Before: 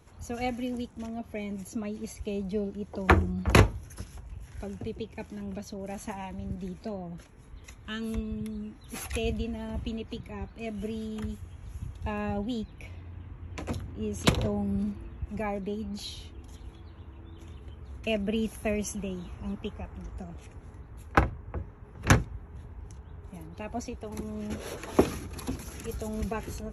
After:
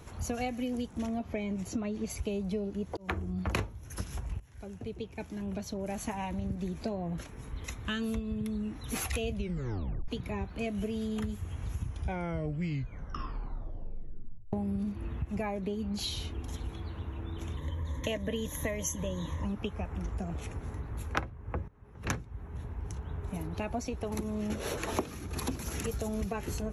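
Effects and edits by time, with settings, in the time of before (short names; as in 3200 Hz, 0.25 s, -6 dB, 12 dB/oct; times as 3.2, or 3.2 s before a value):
1.23–2.1 air absorption 57 m
2.97–3.69 fade in
4.4–7.05 fade in, from -19 dB
9.34 tape stop 0.74 s
11.78 tape stop 2.75 s
17.57–19.45 ripple EQ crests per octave 1.1, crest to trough 16 dB
21.68–23.2 fade in, from -20 dB
whole clip: compressor 6:1, threshold -39 dBFS; gain +8 dB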